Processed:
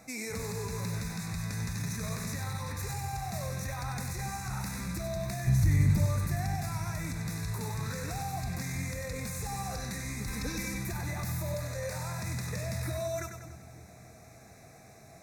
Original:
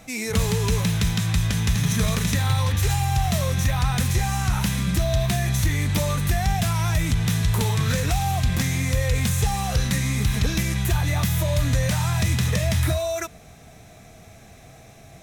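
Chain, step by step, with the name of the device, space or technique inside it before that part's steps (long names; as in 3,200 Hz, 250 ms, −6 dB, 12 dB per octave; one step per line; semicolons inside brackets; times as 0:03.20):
PA system with an anti-feedback notch (high-pass filter 120 Hz 6 dB per octave; Butterworth band-reject 3,100 Hz, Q 2.1; brickwall limiter −22.5 dBFS, peak gain reduction 10.5 dB)
0:05.47–0:06.06: bass and treble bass +15 dB, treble 0 dB
0:10.27–0:10.79: comb filter 3.9 ms, depth 87%
0:11.54–0:11.95: low shelf with overshoot 370 Hz −6.5 dB, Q 3
echo with a time of its own for lows and highs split 320 Hz, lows 290 ms, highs 96 ms, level −7 dB
level −6 dB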